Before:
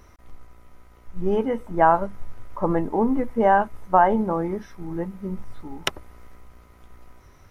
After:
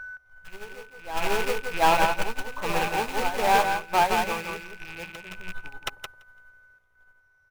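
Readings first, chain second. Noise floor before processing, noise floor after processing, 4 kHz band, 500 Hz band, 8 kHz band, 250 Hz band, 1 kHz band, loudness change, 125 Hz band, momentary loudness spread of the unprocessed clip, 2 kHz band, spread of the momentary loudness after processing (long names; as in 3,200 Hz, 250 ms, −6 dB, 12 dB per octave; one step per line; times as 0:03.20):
−51 dBFS, −64 dBFS, +5.5 dB, −5.5 dB, can't be measured, −12.0 dB, −2.0 dB, −2.5 dB, −8.0 dB, 15 LU, +4.5 dB, 21 LU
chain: loose part that buzzes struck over −35 dBFS, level −21 dBFS
steady tone 1,500 Hz −32 dBFS
in parallel at −9.5 dB: wrap-around overflow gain 19 dB
on the sum: drawn EQ curve 130 Hz 0 dB, 260 Hz −13 dB, 510 Hz +4 dB
soft clipping −12 dBFS, distortion −9 dB
backwards echo 724 ms −6.5 dB
dynamic equaliser 580 Hz, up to −6 dB, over −36 dBFS, Q 3.3
on a send: repeating echo 169 ms, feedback 21%, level −3 dB
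on the sum: expander for the loud parts 2.5 to 1, over −35 dBFS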